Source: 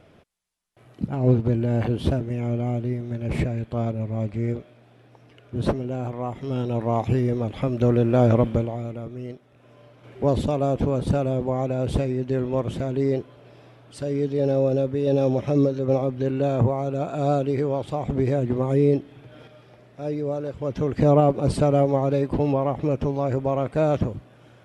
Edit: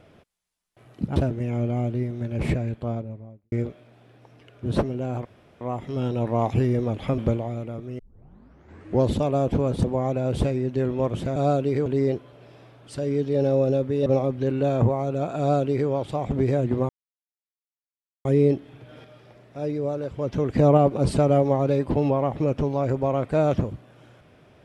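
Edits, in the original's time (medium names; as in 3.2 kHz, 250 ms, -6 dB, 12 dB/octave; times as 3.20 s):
1.16–2.06 s: delete
3.47–4.42 s: studio fade out
6.15 s: insert room tone 0.36 s
7.72–8.46 s: delete
9.27 s: tape start 1.09 s
11.12–11.38 s: delete
15.10–15.85 s: delete
17.18–17.68 s: copy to 12.90 s
18.68 s: insert silence 1.36 s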